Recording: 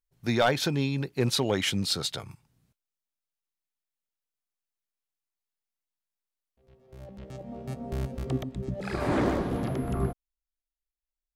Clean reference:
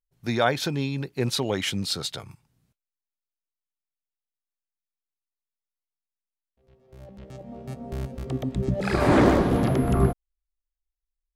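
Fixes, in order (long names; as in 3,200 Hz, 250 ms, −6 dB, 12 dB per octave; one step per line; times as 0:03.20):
clipped peaks rebuilt −15 dBFS
level correction +8 dB, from 0:08.43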